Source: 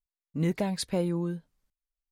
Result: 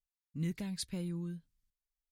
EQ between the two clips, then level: amplifier tone stack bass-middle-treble 6-0-2; +9.0 dB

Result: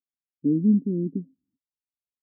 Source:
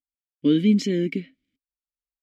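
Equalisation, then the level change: Gaussian low-pass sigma 24 samples; high-pass 150 Hz 12 dB/octave; tilt EQ -2 dB/octave; -2.0 dB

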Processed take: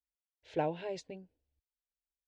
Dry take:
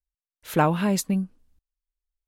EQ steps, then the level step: Gaussian low-pass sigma 2 samples; high-pass 62 Hz 12 dB/octave; static phaser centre 500 Hz, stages 4; -8.0 dB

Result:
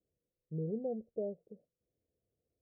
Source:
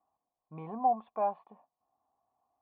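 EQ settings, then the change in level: steep low-pass 520 Hz 72 dB/octave; peaking EQ 260 Hz -12.5 dB 0.59 oct; +10.0 dB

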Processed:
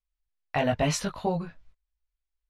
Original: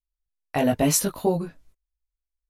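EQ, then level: low-pass 3.8 kHz 12 dB/octave; peaking EQ 320 Hz -11.5 dB 1.4 oct; +1.5 dB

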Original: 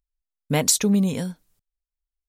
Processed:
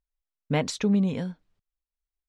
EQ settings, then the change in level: low-pass 3.2 kHz 12 dB/octave; -3.0 dB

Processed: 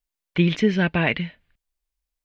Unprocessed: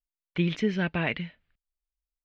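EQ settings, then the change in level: band-stop 1.3 kHz, Q 15; +7.0 dB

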